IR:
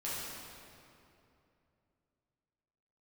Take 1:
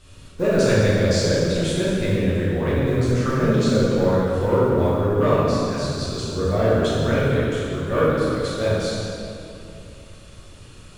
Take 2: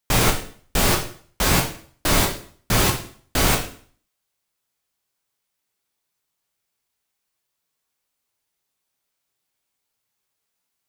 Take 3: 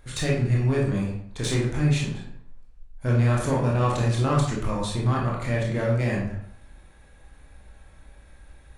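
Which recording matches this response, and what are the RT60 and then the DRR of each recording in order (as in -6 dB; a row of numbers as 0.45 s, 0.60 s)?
1; 2.8 s, 0.50 s, 0.65 s; -9.0 dB, 1.0 dB, -3.5 dB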